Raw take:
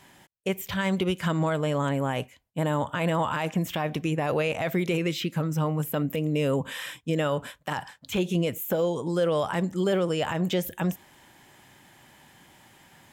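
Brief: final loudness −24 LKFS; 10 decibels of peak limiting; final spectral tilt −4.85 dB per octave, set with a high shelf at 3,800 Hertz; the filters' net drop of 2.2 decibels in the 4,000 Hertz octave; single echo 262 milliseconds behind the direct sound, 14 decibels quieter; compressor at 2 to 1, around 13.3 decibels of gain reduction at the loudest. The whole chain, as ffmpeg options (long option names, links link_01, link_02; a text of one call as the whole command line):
ffmpeg -i in.wav -af "highshelf=frequency=3800:gain=6,equalizer=frequency=4000:width_type=o:gain=-7,acompressor=threshold=-47dB:ratio=2,alimiter=level_in=9.5dB:limit=-24dB:level=0:latency=1,volume=-9.5dB,aecho=1:1:262:0.2,volume=19dB" out.wav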